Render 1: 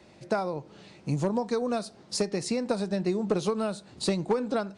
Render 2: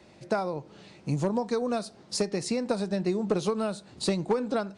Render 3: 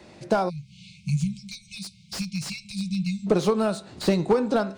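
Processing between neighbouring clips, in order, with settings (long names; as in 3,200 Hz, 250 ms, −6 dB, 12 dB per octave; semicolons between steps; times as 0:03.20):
no processing that can be heard
hum removal 133.1 Hz, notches 31; time-frequency box erased 0:00.49–0:03.27, 210–2,100 Hz; slew-rate limiting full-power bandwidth 62 Hz; level +6 dB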